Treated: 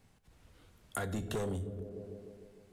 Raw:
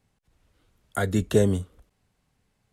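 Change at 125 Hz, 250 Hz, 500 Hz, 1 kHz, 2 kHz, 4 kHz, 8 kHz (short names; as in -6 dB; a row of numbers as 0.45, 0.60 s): -12.5, -13.5, -13.5, -8.0, -10.0, -9.5, -8.5 dB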